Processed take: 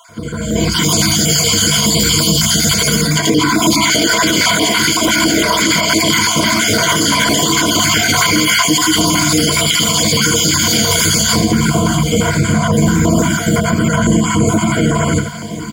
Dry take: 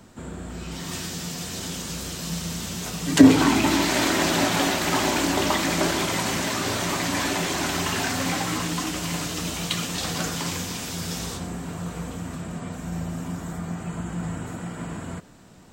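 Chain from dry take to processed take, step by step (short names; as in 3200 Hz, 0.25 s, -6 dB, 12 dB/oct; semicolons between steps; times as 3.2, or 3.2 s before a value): random spectral dropouts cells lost 30%; HPF 94 Hz 12 dB/oct; tapped delay 81/710 ms -9/-17.5 dB; compressor 12:1, threshold -25 dBFS, peak gain reduction 12 dB; ripple EQ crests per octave 1.8, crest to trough 17 dB; AGC; Butterworth band-stop 820 Hz, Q 3.6; high shelf 12000 Hz -4 dB; maximiser +13.5 dB; stepped notch 5.9 Hz 270–1800 Hz; gain -1.5 dB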